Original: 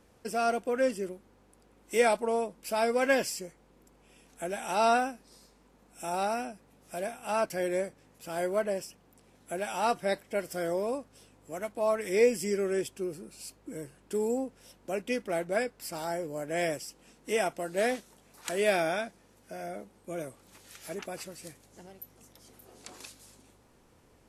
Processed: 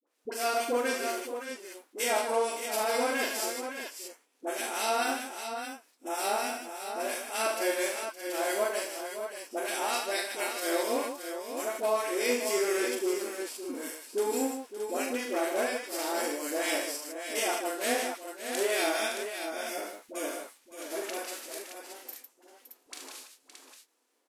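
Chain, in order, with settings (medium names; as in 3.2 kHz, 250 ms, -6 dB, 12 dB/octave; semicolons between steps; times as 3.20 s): formants flattened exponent 0.6; steep high-pass 250 Hz 72 dB/octave; gate -51 dBFS, range -18 dB; in parallel at -1.5 dB: compression, threshold -36 dBFS, peak gain reduction 16.5 dB; on the sum: peak limiter -18 dBFS, peak gain reduction 7.5 dB; harmonic tremolo 4.3 Hz, depth 70%, crossover 1.5 kHz; phase dispersion highs, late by 69 ms, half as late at 650 Hz; on a send: multi-tap echo 41/74/153/565/621 ms -4.5/-8/-7.5/-11.5/-7.5 dB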